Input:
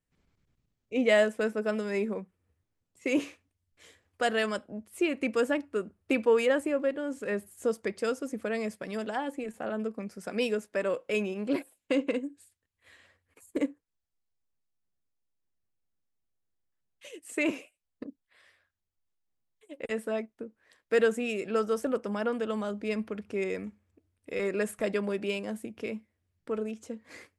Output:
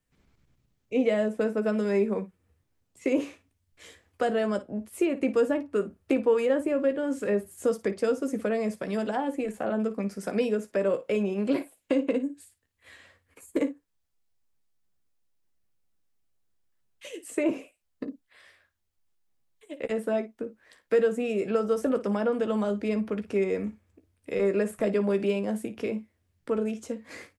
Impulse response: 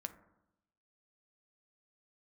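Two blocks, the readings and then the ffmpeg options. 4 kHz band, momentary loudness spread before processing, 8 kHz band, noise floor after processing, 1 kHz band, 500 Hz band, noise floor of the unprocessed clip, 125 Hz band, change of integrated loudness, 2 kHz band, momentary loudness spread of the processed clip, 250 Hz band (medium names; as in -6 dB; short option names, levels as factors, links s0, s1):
-4.5 dB, 14 LU, 0.0 dB, -75 dBFS, +1.5 dB, +3.0 dB, -83 dBFS, no reading, +2.5 dB, -3.5 dB, 12 LU, +4.5 dB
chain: -filter_complex "[0:a]acrossover=split=450|1000[s0][s1][s2];[s0]acompressor=threshold=0.0282:ratio=4[s3];[s1]acompressor=threshold=0.02:ratio=4[s4];[s2]acompressor=threshold=0.00447:ratio=4[s5];[s3][s4][s5]amix=inputs=3:normalize=0,aecho=1:1:15|56:0.316|0.178,volume=1.88"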